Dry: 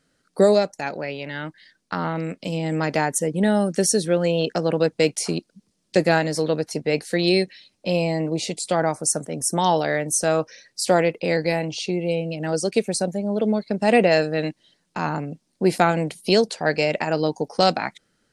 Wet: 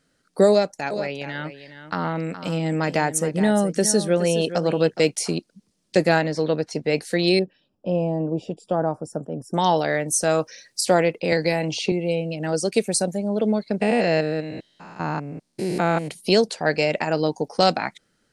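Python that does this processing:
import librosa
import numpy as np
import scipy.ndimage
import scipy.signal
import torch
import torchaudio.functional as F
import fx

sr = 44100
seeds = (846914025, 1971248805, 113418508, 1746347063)

y = fx.echo_single(x, sr, ms=418, db=-11.5, at=(0.9, 5.0), fade=0.02)
y = fx.lowpass(y, sr, hz=fx.line((6.21, 3600.0), (6.82, 6900.0)), slope=12, at=(6.21, 6.82), fade=0.02)
y = fx.moving_average(y, sr, points=21, at=(7.39, 9.54))
y = fx.high_shelf(y, sr, hz=6800.0, db=10.0, at=(10.29, 10.81))
y = fx.band_squash(y, sr, depth_pct=100, at=(11.32, 11.92))
y = fx.high_shelf(y, sr, hz=7900.0, db=8.5, at=(12.71, 13.29))
y = fx.spec_steps(y, sr, hold_ms=200, at=(13.8, 16.07), fade=0.02)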